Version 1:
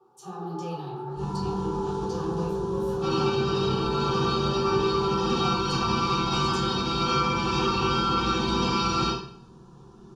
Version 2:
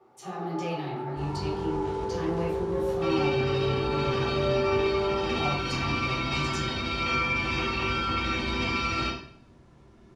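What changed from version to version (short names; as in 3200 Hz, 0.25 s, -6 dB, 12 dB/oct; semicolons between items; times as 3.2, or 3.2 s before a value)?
second sound: send -9.5 dB; master: remove fixed phaser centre 410 Hz, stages 8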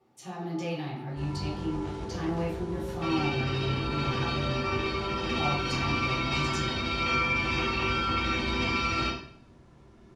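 first sound -10.5 dB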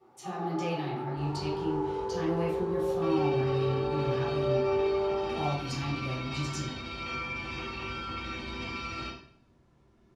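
first sound: send +11.0 dB; second sound -9.0 dB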